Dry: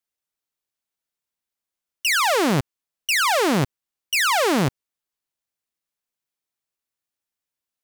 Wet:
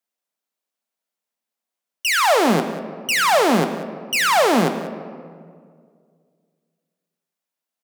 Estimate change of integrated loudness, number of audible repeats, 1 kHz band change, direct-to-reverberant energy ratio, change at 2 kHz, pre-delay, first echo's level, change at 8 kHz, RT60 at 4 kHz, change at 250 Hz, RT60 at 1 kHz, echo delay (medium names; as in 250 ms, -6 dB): +2.0 dB, 1, +4.5 dB, 7.5 dB, +1.5 dB, 3 ms, -15.5 dB, +0.5 dB, 1.1 s, +3.0 dB, 1.9 s, 189 ms